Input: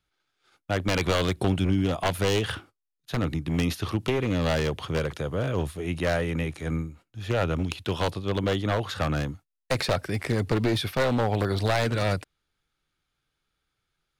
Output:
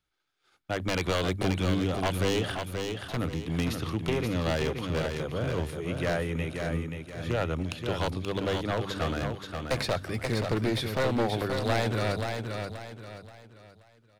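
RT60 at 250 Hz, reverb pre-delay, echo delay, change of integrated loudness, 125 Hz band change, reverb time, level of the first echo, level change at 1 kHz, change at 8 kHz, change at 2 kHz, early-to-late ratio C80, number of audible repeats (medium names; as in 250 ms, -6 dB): no reverb, no reverb, 529 ms, -3.0 dB, -3.5 dB, no reverb, -5.5 dB, -2.5 dB, -2.5 dB, -2.5 dB, no reverb, 4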